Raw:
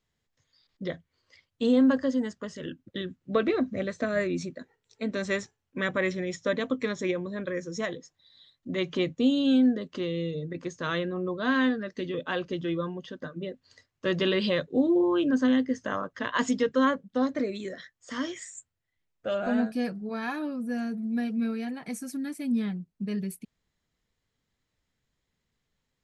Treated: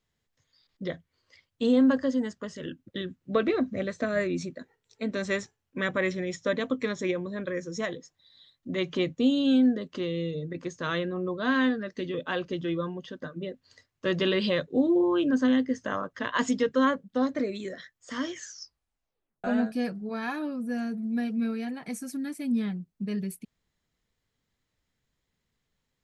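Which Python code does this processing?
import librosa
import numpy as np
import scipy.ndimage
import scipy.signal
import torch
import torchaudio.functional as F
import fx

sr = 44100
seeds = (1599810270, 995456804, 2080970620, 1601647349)

y = fx.edit(x, sr, fx.tape_stop(start_s=18.32, length_s=1.12), tone=tone)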